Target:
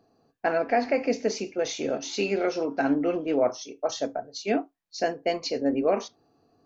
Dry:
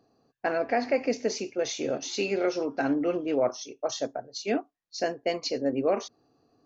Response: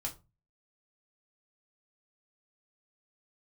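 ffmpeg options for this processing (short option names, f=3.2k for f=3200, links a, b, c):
-filter_complex "[0:a]asplit=2[a][b];[1:a]atrim=start_sample=2205,atrim=end_sample=3528,lowpass=4.2k[c];[b][c]afir=irnorm=-1:irlink=0,volume=-8dB[d];[a][d]amix=inputs=2:normalize=0"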